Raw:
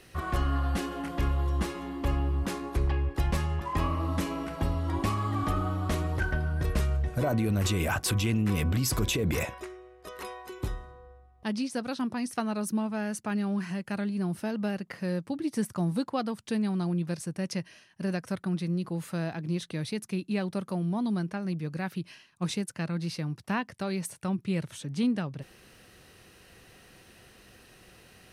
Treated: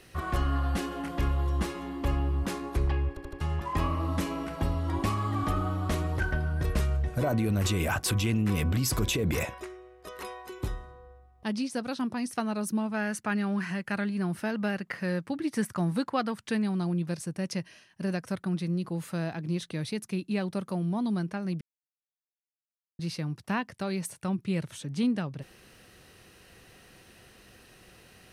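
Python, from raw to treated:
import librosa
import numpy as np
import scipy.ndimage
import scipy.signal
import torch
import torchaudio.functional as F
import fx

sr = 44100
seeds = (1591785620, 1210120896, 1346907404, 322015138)

y = fx.peak_eq(x, sr, hz=1700.0, db=7.0, octaves=1.4, at=(12.94, 16.64))
y = fx.edit(y, sr, fx.stutter_over(start_s=3.09, slice_s=0.08, count=4),
    fx.silence(start_s=21.61, length_s=1.38), tone=tone)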